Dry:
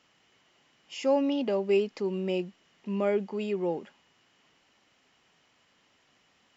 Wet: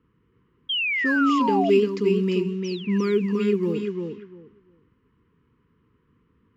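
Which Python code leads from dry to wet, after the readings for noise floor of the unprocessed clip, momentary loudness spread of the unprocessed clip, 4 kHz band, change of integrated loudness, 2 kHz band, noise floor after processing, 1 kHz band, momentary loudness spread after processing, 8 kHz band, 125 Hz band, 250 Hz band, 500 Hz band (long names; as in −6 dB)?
−68 dBFS, 12 LU, +13.0 dB, +7.0 dB, +17.0 dB, −67 dBFS, +11.5 dB, 11 LU, can't be measured, +11.0 dB, +9.0 dB, +5.0 dB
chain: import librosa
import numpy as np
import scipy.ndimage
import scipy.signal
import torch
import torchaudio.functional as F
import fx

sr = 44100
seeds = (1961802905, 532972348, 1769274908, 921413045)

p1 = fx.spec_paint(x, sr, seeds[0], shape='fall', start_s=2.64, length_s=0.34, low_hz=1600.0, high_hz=6200.0, level_db=-45.0)
p2 = p1 + fx.echo_feedback(p1, sr, ms=347, feedback_pct=18, wet_db=-5.0, dry=0)
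p3 = fx.quant_float(p2, sr, bits=6)
p4 = fx.env_lowpass(p3, sr, base_hz=810.0, full_db=-27.0)
p5 = scipy.signal.sosfilt(scipy.signal.cheby1(3, 1.0, [470.0, 1000.0], 'bandstop', fs=sr, output='sos'), p4)
p6 = fx.peak_eq(p5, sr, hz=62.0, db=13.0, octaves=2.8)
p7 = fx.spec_paint(p6, sr, seeds[1], shape='fall', start_s=0.69, length_s=1.01, low_hz=640.0, high_hz=3300.0, level_db=-29.0)
y = F.gain(torch.from_numpy(p7), 4.5).numpy()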